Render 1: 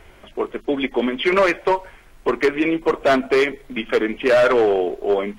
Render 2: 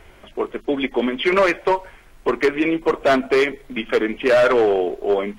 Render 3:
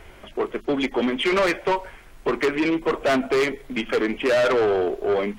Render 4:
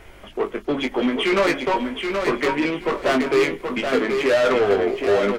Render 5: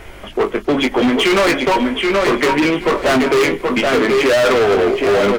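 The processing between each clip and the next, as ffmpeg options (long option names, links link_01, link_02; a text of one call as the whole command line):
ffmpeg -i in.wav -af anull out.wav
ffmpeg -i in.wav -af "acontrast=78,asoftclip=type=tanh:threshold=-10.5dB,volume=-5.5dB" out.wav
ffmpeg -i in.wav -filter_complex "[0:a]asplit=2[link_01][link_02];[link_02]adelay=20,volume=-6dB[link_03];[link_01][link_03]amix=inputs=2:normalize=0,aecho=1:1:776|1552|2328:0.531|0.127|0.0306" out.wav
ffmpeg -i in.wav -af "volume=20dB,asoftclip=hard,volume=-20dB,volume=9dB" out.wav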